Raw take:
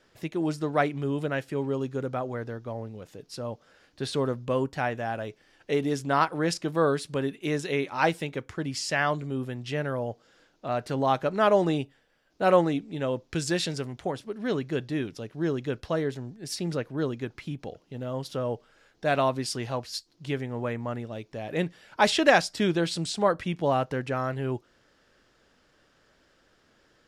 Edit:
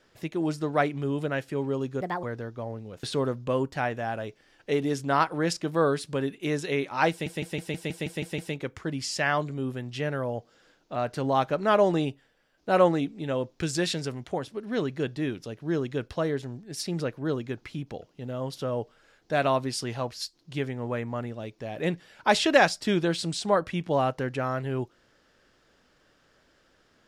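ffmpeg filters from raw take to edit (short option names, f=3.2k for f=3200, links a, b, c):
-filter_complex "[0:a]asplit=12[a][b][c][d][e][f][g][h][i][j][k][l];[a]atrim=end=2.014[m];[b]atrim=start=2.01:end=2.32,asetpts=PTS-STARTPTS,asetrate=61299,aresample=44100,atrim=end_sample=9835,asetpts=PTS-STARTPTS[n];[c]atrim=start=2.316:end=3.122[o];[d]atrim=start=4.038:end=8.272[p];[e]atrim=start=8.108:end=8.272[q];[f]atrim=start=8.108:end=8.272[r];[g]atrim=start=8.108:end=8.272[s];[h]atrim=start=8.108:end=8.272[t];[i]atrim=start=8.108:end=8.272[u];[j]atrim=start=8.108:end=8.272[v];[k]atrim=start=8.108:end=8.272[w];[l]atrim=start=8.108[x];[m][n]acrossfade=d=0.004:c1=hsin:c2=hsin[y];[y][o]acrossfade=d=0.004:c1=hsin:c2=hsin[z];[z][p]acrossfade=d=0.004:c1=hsin:c2=hsin[aa];[aa][q]acrossfade=d=0.004:c1=hsin:c2=hsin[ab];[ab][r]acrossfade=d=0.004:c1=hsin:c2=hsin[ac];[ac][s]acrossfade=d=0.004:c1=hsin:c2=hsin[ad];[ad][t]acrossfade=d=0.004:c1=hsin:c2=hsin[ae];[ae][u]acrossfade=d=0.004:c1=hsin:c2=hsin[af];[af][v]acrossfade=d=0.004:c1=hsin:c2=hsin[ag];[ag][w]acrossfade=d=0.004:c1=hsin:c2=hsin[ah];[ah][x]acrossfade=d=0.004:c1=hsin:c2=hsin"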